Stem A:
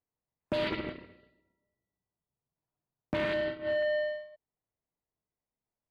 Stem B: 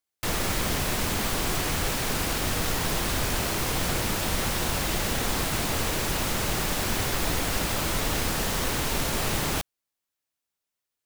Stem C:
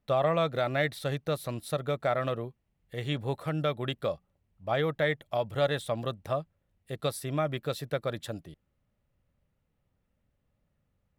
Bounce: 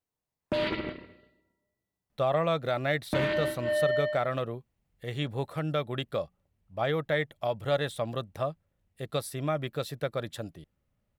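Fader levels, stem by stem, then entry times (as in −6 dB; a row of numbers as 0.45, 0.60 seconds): +2.0 dB, muted, −0.5 dB; 0.00 s, muted, 2.10 s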